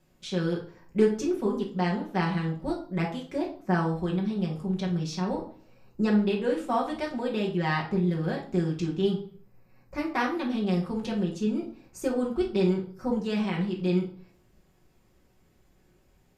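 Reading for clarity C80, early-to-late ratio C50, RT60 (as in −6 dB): 14.0 dB, 8.5 dB, 0.45 s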